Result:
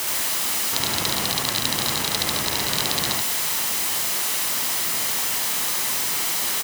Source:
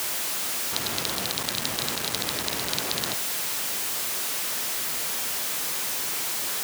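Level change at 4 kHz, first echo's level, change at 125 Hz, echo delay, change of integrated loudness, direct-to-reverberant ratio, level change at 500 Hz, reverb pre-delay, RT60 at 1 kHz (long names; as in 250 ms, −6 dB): +5.0 dB, −1.5 dB, +6.5 dB, 72 ms, +5.0 dB, no reverb audible, +3.0 dB, no reverb audible, no reverb audible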